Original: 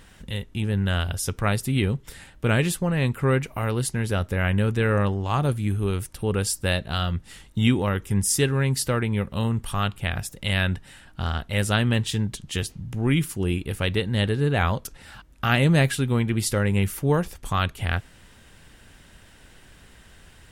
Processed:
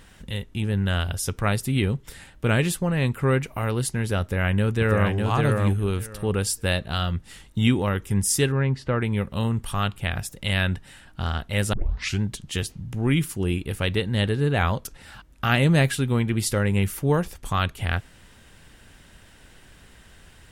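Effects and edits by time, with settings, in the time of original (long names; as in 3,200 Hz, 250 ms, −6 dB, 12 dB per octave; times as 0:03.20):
0:04.21–0:05.13: delay throw 600 ms, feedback 15%, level −3 dB
0:08.52–0:09.01: low-pass filter 2,200 Hz
0:11.73: tape start 0.49 s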